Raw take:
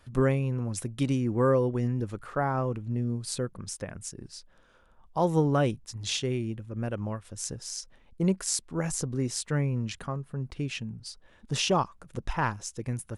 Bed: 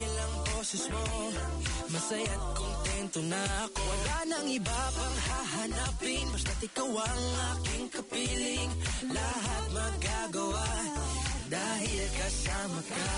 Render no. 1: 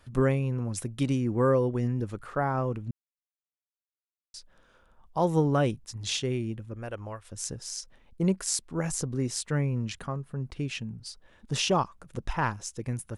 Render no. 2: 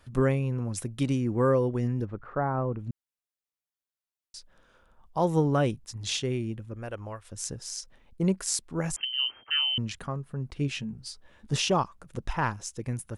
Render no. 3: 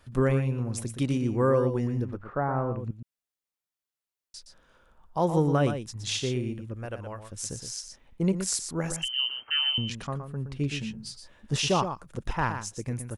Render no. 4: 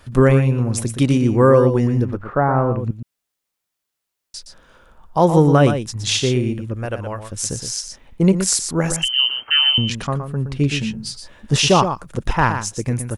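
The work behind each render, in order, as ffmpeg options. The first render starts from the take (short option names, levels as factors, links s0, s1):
-filter_complex "[0:a]asettb=1/sr,asplit=3[s0][s1][s2];[s0]atrim=end=6.744[s3];[s1]atrim=start=6.74:end=7.32,asetpts=PTS-STARTPTS,afade=t=in:d=0.004:c=qsin,afade=t=out:st=0.576:d=0.004:c=qsin,equalizer=f=180:w=0.97:g=-13.5[s4];[s2]atrim=start=7.316[s5];[s3][s4]acrossfade=d=0.004:c1=hsin:c2=qsin[s6];[s6][s5]acrossfade=d=0.004:c1=qsin:c2=hsin,asplit=3[s7][s8][s9];[s7]atrim=end=2.91,asetpts=PTS-STARTPTS,afade=t=out:st=2.906:d=0.004:c=hsin[s10];[s8]atrim=start=2.91:end=4.34,asetpts=PTS-STARTPTS,volume=0[s11];[s9]atrim=start=4.34,asetpts=PTS-STARTPTS,afade=t=in:d=0.004:c=hsin[s12];[s10][s11][s12]concat=n=3:v=0:a=1"
-filter_complex "[0:a]asettb=1/sr,asplit=3[s0][s1][s2];[s0]atrim=end=2.054[s3];[s1]atrim=start=2.05:end=2.79,asetpts=PTS-STARTPTS,afade=t=in:d=0.004:c=qsin,afade=t=out:st=0.736:d=0.004:c=qsin,lowpass=1500[s4];[s2]atrim=start=2.786[s5];[s3][s4]acrossfade=d=0.004:c1=hsin:c2=qsin[s6];[s6][s5]acrossfade=d=0.004:c1=qsin:c2=hsin,asettb=1/sr,asplit=3[s7][s8][s9];[s7]atrim=end=8.964[s10];[s8]atrim=start=8.96:end=9.78,asetpts=PTS-STARTPTS,afade=t=in:d=0.004:c=qsin,afade=t=out:st=0.816:d=0.004:c=qsin,lowpass=f=2700:t=q:w=0.5098,lowpass=f=2700:t=q:w=0.6013,lowpass=f=2700:t=q:w=0.9,lowpass=f=2700:t=q:w=2.563,afreqshift=-3200[s11];[s9]atrim=start=9.776[s12];[s10][s11]acrossfade=d=0.004:c1=hsin:c2=qsin[s13];[s13][s12]acrossfade=d=0.004:c1=qsin:c2=hsin,asettb=1/sr,asplit=3[s14][s15][s16];[s14]atrim=end=10.594[s17];[s15]atrim=start=10.59:end=11.56,asetpts=PTS-STARTPTS,afade=t=in:d=0.004:c=qsin,afade=t=out:st=0.966:d=0.004:c=qsin,asplit=2[s18][s19];[s19]adelay=14,volume=0.562[s20];[s18][s20]amix=inputs=2:normalize=0,atrim=end_sample=42777[s21];[s16]atrim=start=11.556[s22];[s17][s21]acrossfade=d=0.004:c1=hsin:c2=qsin[s23];[s23][s22]acrossfade=d=0.004:c1=qsin:c2=hsin"
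-af "aecho=1:1:119:0.376"
-af "volume=3.55,alimiter=limit=0.794:level=0:latency=1"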